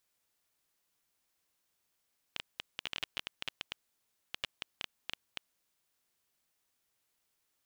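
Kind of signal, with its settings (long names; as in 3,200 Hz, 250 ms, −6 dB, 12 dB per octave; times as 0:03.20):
Geiger counter clicks 9.8 per second −18.5 dBFS 3.12 s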